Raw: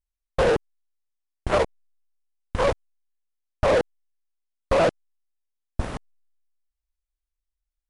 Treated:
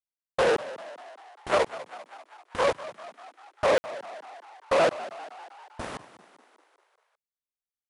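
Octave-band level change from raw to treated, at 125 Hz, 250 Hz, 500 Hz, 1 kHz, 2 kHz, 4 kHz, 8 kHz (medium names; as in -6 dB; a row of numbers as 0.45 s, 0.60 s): -13.0 dB, -6.0 dB, -2.5 dB, -0.5 dB, 0.0 dB, 0.0 dB, 0.0 dB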